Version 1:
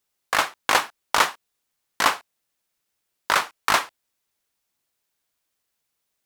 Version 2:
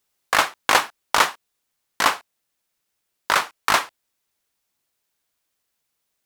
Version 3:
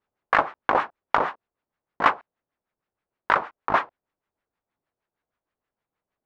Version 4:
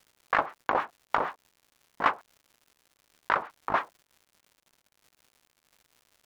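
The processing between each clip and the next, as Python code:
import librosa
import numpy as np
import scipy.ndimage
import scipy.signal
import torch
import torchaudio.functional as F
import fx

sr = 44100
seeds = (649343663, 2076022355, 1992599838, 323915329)

y1 = fx.rider(x, sr, range_db=10, speed_s=2.0)
y1 = y1 * 10.0 ** (2.0 / 20.0)
y2 = fx.filter_lfo_lowpass(y1, sr, shape='sine', hz=6.4, low_hz=620.0, high_hz=1900.0, q=0.98)
y3 = fx.dmg_crackle(y2, sr, seeds[0], per_s=200.0, level_db=-42.0)
y3 = y3 * 10.0 ** (-5.5 / 20.0)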